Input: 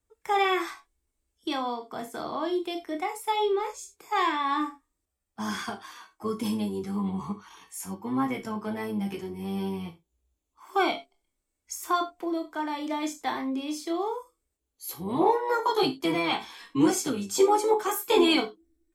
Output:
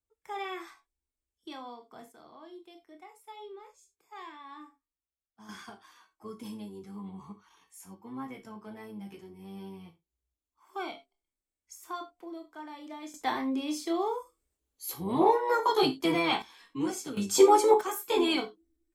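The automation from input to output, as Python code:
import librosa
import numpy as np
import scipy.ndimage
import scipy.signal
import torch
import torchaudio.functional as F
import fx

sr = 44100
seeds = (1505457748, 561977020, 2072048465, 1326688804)

y = fx.gain(x, sr, db=fx.steps((0.0, -13.0), (2.12, -20.0), (5.49, -12.5), (13.14, -0.5), (16.42, -9.5), (17.17, 2.0), (17.81, -5.5)))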